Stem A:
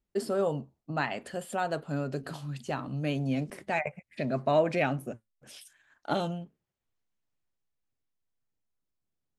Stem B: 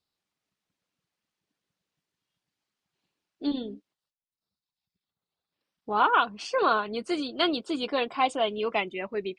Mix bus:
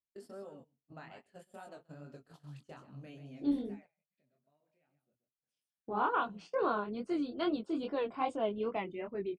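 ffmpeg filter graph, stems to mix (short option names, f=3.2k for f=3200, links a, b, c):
-filter_complex "[0:a]acompressor=threshold=-32dB:ratio=6,volume=-11dB,afade=t=out:st=3.34:d=0.42:silence=0.237137,asplit=2[a][b];[b]volume=-9dB[c];[1:a]firequalizer=gain_entry='entry(130,0);entry(700,-6);entry(3000,-15)':delay=0.05:min_phase=1,volume=0.5dB[d];[c]aecho=0:1:132:1[e];[a][d][e]amix=inputs=3:normalize=0,flanger=delay=20:depth=5:speed=2.4,agate=range=-17dB:threshold=-52dB:ratio=16:detection=peak"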